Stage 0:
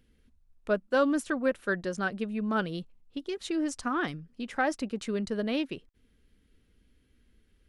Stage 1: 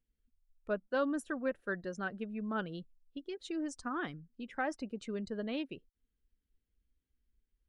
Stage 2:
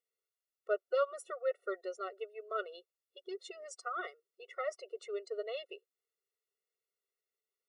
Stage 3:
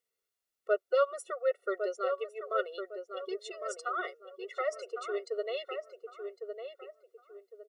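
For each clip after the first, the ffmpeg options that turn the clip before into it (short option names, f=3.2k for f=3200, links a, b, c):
-af "afftdn=nr=15:nf=-46,volume=-7.5dB"
-af "afftfilt=real='re*eq(mod(floor(b*sr/1024/370),2),1)':imag='im*eq(mod(floor(b*sr/1024/370),2),1)':win_size=1024:overlap=0.75,volume=2.5dB"
-filter_complex "[0:a]asplit=2[a][b];[b]adelay=1106,lowpass=f=1.5k:p=1,volume=-6dB,asplit=2[c][d];[d]adelay=1106,lowpass=f=1.5k:p=1,volume=0.33,asplit=2[e][f];[f]adelay=1106,lowpass=f=1.5k:p=1,volume=0.33,asplit=2[g][h];[h]adelay=1106,lowpass=f=1.5k:p=1,volume=0.33[i];[a][c][e][g][i]amix=inputs=5:normalize=0,volume=4.5dB"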